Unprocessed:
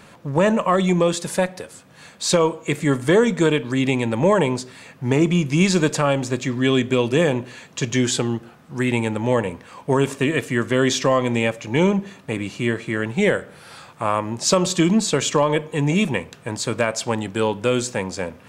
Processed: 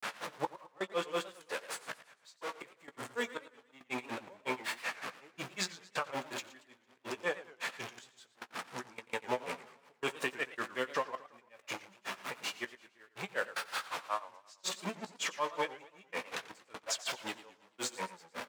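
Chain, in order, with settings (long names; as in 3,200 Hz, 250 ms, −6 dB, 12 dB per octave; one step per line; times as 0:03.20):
converter with a step at zero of −22.5 dBFS
high-pass filter 1,100 Hz 12 dB per octave
spectral tilt −3.5 dB per octave
brickwall limiter −20 dBFS, peak gain reduction 10 dB
gate pattern "xx..xx.x" 78 BPM −24 dB
granular cloud 129 ms, grains 5.4 per second, pitch spread up and down by 0 semitones
double-tracking delay 16 ms −11.5 dB
single-tap delay 89 ms −20.5 dB
feedback echo with a swinging delay time 112 ms, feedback 46%, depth 209 cents, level −16.5 dB
level −1 dB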